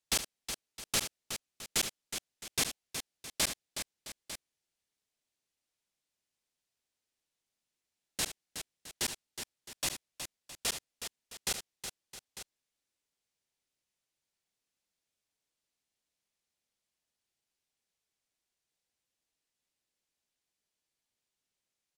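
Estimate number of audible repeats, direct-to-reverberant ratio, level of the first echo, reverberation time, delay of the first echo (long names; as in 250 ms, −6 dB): 4, no reverb audible, −12.0 dB, no reverb audible, 70 ms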